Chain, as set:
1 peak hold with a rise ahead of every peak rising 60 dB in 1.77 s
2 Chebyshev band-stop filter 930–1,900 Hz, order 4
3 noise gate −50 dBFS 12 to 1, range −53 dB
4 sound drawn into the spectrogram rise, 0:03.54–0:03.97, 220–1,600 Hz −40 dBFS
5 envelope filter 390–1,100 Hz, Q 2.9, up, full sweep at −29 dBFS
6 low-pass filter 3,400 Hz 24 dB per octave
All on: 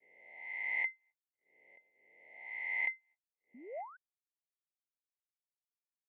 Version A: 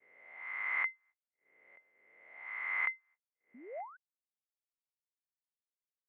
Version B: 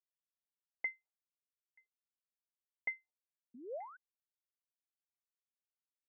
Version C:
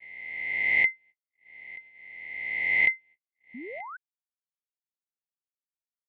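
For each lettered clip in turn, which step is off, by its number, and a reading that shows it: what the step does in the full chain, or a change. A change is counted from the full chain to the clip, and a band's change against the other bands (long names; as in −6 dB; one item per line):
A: 2, change in crest factor +3.0 dB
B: 1, 2 kHz band −9.0 dB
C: 5, 250 Hz band +8.0 dB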